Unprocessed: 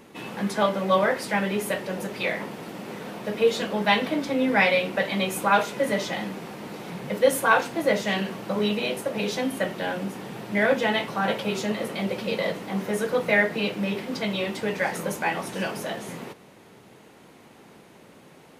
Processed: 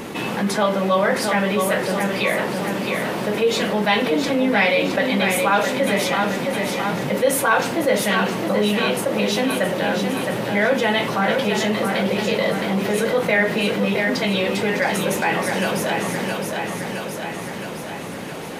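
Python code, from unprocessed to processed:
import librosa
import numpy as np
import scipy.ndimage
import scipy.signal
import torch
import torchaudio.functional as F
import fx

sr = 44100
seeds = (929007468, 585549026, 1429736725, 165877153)

y = fx.echo_feedback(x, sr, ms=666, feedback_pct=48, wet_db=-7.5)
y = fx.env_flatten(y, sr, amount_pct=50)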